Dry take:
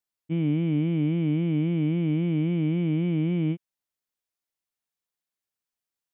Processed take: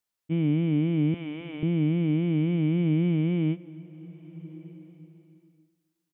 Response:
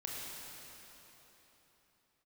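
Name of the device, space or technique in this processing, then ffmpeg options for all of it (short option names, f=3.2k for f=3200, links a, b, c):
ducked reverb: -filter_complex "[0:a]asettb=1/sr,asplit=3[a][b][c];[a]atrim=end=1.144[d];[b]atrim=start=1.14:end=1.63,asetpts=PTS-STARTPTS,afade=t=in:d=0.004:c=qsin,afade=t=out:st=0.486:d=0.004:c=qsin,highpass=640[e];[c]atrim=start=1.626[f];[d][e]acrossfade=d=0.004:c1=hsin:c2=qsin[g];[g][f]acrossfade=d=0.004:c1=qsin:c2=hsin,asplit=3[h][i][j];[1:a]atrim=start_sample=2205[k];[i][k]afir=irnorm=-1:irlink=0[l];[j]apad=whole_len=270476[m];[l][m]sidechaincompress=threshold=-48dB:ratio=3:attack=16:release=651,volume=-3.5dB[n];[h][n]amix=inputs=2:normalize=0,asplit=2[o][p];[p]adelay=268,lowpass=f=2k:p=1,volume=-20dB,asplit=2[q][r];[r]adelay=268,lowpass=f=2k:p=1,volume=0.5,asplit=2[s][t];[t]adelay=268,lowpass=f=2k:p=1,volume=0.5,asplit=2[u][v];[v]adelay=268,lowpass=f=2k:p=1,volume=0.5[w];[o][q][s][u][w]amix=inputs=5:normalize=0"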